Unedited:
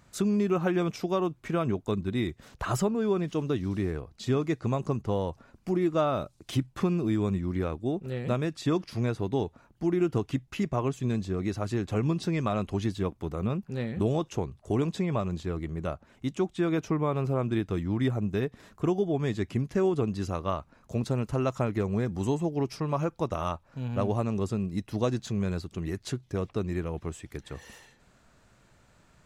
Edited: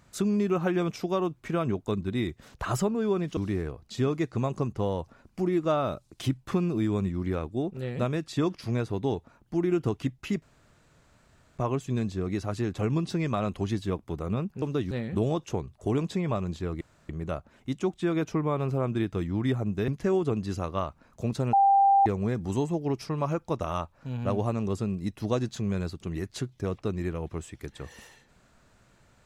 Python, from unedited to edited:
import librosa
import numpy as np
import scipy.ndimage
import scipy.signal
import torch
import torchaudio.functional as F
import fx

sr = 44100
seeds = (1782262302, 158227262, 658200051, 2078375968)

y = fx.edit(x, sr, fx.move(start_s=3.37, length_s=0.29, to_s=13.75),
    fx.insert_room_tone(at_s=10.71, length_s=1.16),
    fx.insert_room_tone(at_s=15.65, length_s=0.28),
    fx.cut(start_s=18.44, length_s=1.15),
    fx.bleep(start_s=21.24, length_s=0.53, hz=791.0, db=-16.5), tone=tone)